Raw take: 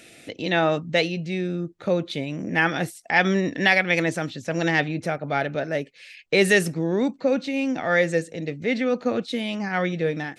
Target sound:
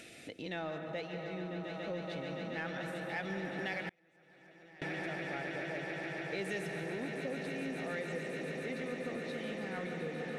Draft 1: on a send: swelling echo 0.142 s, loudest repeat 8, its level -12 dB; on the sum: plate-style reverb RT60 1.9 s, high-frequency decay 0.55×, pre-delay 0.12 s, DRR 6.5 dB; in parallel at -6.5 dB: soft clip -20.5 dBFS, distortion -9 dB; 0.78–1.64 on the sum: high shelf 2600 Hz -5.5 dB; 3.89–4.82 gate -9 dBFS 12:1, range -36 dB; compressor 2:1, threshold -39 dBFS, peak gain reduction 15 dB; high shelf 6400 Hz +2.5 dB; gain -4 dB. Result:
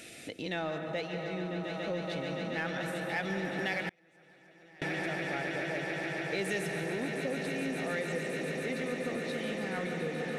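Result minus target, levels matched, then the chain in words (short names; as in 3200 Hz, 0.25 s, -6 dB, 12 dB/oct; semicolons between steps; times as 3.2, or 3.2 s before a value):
compressor: peak gain reduction -4.5 dB; 8000 Hz band +4.0 dB
on a send: swelling echo 0.142 s, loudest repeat 8, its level -12 dB; on the sum: plate-style reverb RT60 1.9 s, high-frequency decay 0.55×, pre-delay 0.12 s, DRR 6.5 dB; in parallel at -6.5 dB: soft clip -20.5 dBFS, distortion -9 dB; 0.78–1.64 on the sum: high shelf 2600 Hz -5.5 dB; 3.89–4.82 gate -9 dBFS 12:1, range -36 dB; compressor 2:1, threshold -48 dBFS, peak gain reduction 19.5 dB; high shelf 6400 Hz -4.5 dB; gain -4 dB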